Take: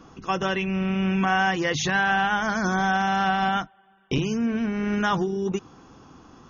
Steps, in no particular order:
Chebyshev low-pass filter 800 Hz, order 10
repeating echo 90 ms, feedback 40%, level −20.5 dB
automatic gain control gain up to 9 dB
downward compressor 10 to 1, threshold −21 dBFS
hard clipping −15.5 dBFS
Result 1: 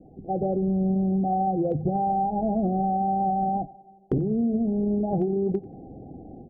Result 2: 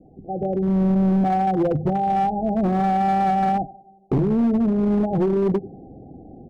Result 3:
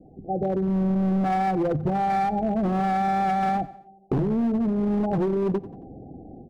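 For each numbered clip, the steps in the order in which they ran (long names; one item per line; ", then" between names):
automatic gain control, then Chebyshev low-pass filter, then downward compressor, then hard clipping, then repeating echo
repeating echo, then downward compressor, then Chebyshev low-pass filter, then automatic gain control, then hard clipping
Chebyshev low-pass filter, then automatic gain control, then hard clipping, then repeating echo, then downward compressor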